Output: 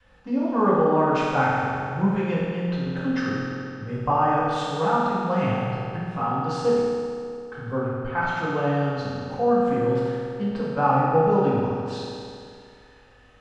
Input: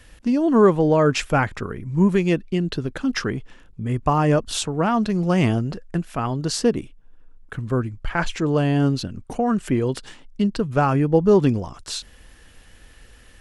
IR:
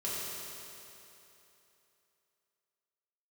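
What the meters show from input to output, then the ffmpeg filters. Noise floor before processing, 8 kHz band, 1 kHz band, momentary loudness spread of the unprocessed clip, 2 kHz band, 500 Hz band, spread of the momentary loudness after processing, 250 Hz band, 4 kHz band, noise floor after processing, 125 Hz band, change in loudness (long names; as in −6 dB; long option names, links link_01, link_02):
−49 dBFS, below −10 dB, +3.0 dB, 14 LU, −0.5 dB, −1.5 dB, 11 LU, −4.5 dB, −7.5 dB, −52 dBFS, −5.0 dB, −2.5 dB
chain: -filter_complex "[0:a]lowpass=3900,equalizer=frequency=970:width_type=o:width=1.1:gain=9[link_01];[1:a]atrim=start_sample=2205,asetrate=57330,aresample=44100[link_02];[link_01][link_02]afir=irnorm=-1:irlink=0,adynamicequalizer=threshold=0.0708:dfrequency=380:dqfactor=1.1:tfrequency=380:tqfactor=1.1:attack=5:release=100:ratio=0.375:range=2:mode=cutabove:tftype=bell,volume=-7dB"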